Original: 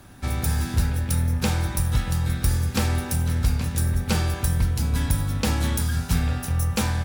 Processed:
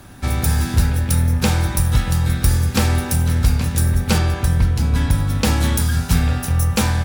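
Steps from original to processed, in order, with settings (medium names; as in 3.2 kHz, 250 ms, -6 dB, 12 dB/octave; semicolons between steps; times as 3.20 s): 4.18–5.30 s: treble shelf 6.4 kHz -9.5 dB; trim +6 dB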